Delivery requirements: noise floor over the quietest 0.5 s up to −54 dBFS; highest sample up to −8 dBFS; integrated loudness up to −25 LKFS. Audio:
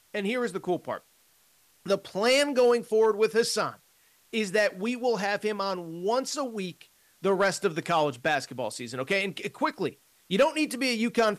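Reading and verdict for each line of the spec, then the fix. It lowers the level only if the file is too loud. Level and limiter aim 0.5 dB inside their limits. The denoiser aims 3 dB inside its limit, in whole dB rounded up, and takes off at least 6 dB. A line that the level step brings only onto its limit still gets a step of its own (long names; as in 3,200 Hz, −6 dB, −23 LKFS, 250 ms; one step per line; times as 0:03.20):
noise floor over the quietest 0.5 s −63 dBFS: in spec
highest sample −14.0 dBFS: in spec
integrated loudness −27.5 LKFS: in spec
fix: no processing needed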